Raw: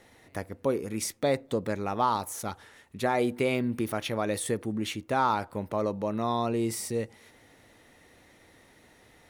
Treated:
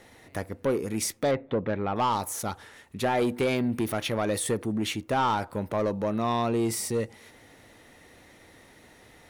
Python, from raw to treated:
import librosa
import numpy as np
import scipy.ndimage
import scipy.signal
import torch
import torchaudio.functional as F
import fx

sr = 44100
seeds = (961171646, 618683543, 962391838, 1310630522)

y = fx.lowpass(x, sr, hz=2900.0, slope=24, at=(1.31, 1.96))
y = 10.0 ** (-23.0 / 20.0) * np.tanh(y / 10.0 ** (-23.0 / 20.0))
y = F.gain(torch.from_numpy(y), 4.0).numpy()